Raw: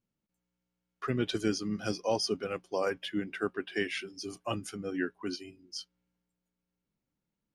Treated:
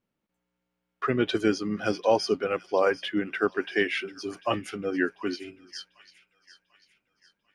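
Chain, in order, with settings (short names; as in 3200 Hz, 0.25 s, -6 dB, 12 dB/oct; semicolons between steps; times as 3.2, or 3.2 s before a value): tone controls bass -8 dB, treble -12 dB; on a send: thin delay 0.744 s, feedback 44%, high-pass 2000 Hz, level -15.5 dB; on the sum: gain +8.5 dB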